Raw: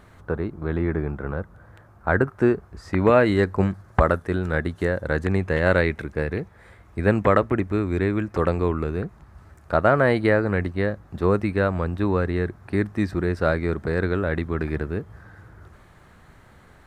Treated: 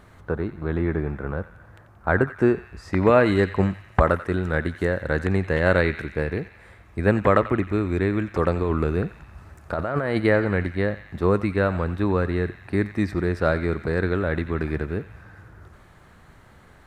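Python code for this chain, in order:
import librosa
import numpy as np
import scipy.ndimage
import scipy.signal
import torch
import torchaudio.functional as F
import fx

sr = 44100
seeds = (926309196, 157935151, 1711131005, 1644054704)

p1 = fx.over_compress(x, sr, threshold_db=-23.0, ratio=-1.0, at=(8.63, 10.2))
y = p1 + fx.echo_banded(p1, sr, ms=89, feedback_pct=70, hz=2600.0, wet_db=-11, dry=0)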